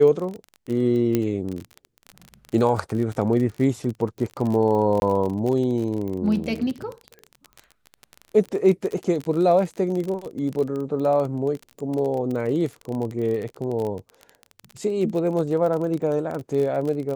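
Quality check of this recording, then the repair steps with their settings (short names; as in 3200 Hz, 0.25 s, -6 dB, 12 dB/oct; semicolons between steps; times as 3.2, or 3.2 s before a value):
crackle 30/s -27 dBFS
1.15 pop -9 dBFS
5–5.02 gap 21 ms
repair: de-click; interpolate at 5, 21 ms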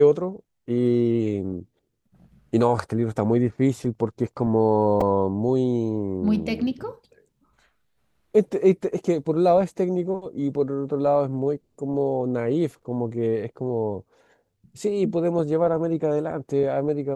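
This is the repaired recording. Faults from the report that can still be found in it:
none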